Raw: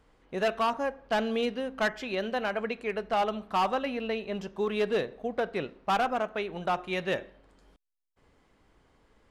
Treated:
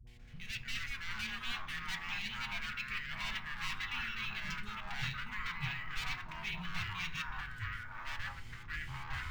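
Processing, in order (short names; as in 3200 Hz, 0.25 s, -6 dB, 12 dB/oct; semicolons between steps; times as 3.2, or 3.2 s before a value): one diode to ground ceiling -35.5 dBFS; recorder AGC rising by 5.3 dB/s; elliptic band-stop 140–2200 Hz, stop band 40 dB; reverse; compressor 6:1, threshold -50 dBFS, peak gain reduction 14 dB; reverse; step gate "x.xxx.xxxxxxxx" 149 bpm; buzz 120 Hz, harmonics 9, -79 dBFS -6 dB/oct; dispersion highs, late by 72 ms, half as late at 400 Hz; on a send at -5 dB: reverb RT60 0.45 s, pre-delay 3 ms; on the sum: echoes that change speed 0.1 s, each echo -5 st, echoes 3; decimation joined by straight lines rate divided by 2×; gain +11.5 dB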